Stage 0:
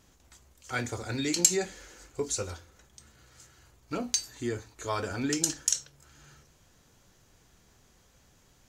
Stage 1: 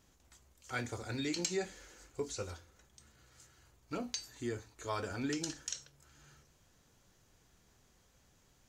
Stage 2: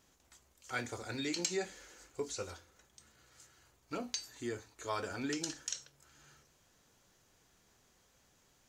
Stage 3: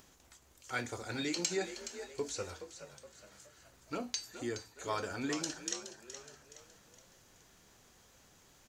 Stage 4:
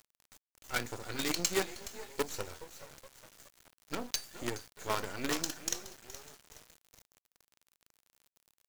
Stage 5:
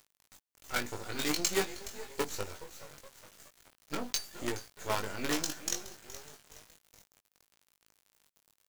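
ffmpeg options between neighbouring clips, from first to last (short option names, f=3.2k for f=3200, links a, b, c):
-filter_complex "[0:a]acrossover=split=5500[a][b];[b]acompressor=threshold=-45dB:ratio=4:attack=1:release=60[c];[a][c]amix=inputs=2:normalize=0,volume=-6dB"
-af "lowshelf=f=180:g=-8.5,volume=1dB"
-filter_complex "[0:a]acompressor=mode=upward:threshold=-57dB:ratio=2.5,asplit=2[a][b];[b]asplit=4[c][d][e][f];[c]adelay=420,afreqshift=54,volume=-11dB[g];[d]adelay=840,afreqshift=108,volume=-18.5dB[h];[e]adelay=1260,afreqshift=162,volume=-26.1dB[i];[f]adelay=1680,afreqshift=216,volume=-33.6dB[j];[g][h][i][j]amix=inputs=4:normalize=0[k];[a][k]amix=inputs=2:normalize=0,volume=1dB"
-af "acrusher=bits=6:dc=4:mix=0:aa=0.000001,volume=3dB"
-filter_complex "[0:a]asplit=2[a][b];[b]adelay=20,volume=-5dB[c];[a][c]amix=inputs=2:normalize=0"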